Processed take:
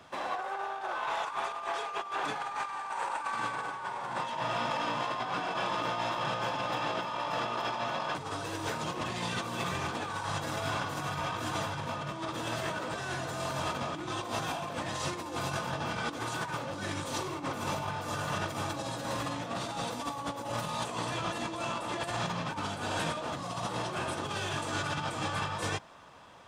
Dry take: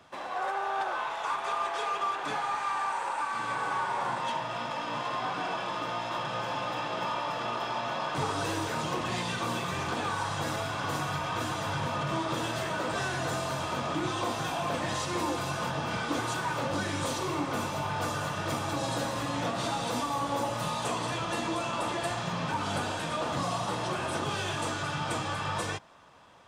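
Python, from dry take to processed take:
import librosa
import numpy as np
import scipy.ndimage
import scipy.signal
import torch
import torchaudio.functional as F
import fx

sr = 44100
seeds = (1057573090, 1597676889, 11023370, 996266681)

y = fx.over_compress(x, sr, threshold_db=-34.0, ratio=-0.5)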